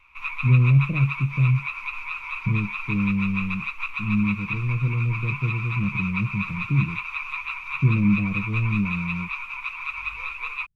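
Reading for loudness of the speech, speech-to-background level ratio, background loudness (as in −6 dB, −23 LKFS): −24.5 LKFS, 5.5 dB, −30.0 LKFS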